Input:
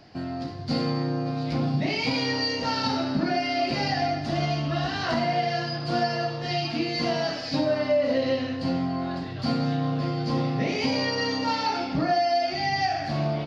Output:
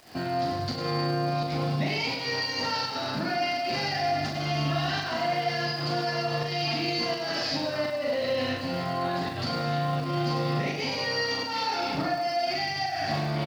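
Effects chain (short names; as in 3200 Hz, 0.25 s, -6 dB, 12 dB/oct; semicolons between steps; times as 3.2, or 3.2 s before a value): low shelf 340 Hz -8.5 dB; in parallel at -2 dB: negative-ratio compressor -32 dBFS; on the sum: limiter -22 dBFS, peak gain reduction 10 dB; pump 84 bpm, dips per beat 1, -16 dB, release 0.178 s; crackle 480/s -43 dBFS; on a send: reverse bouncing-ball echo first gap 40 ms, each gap 1.5×, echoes 5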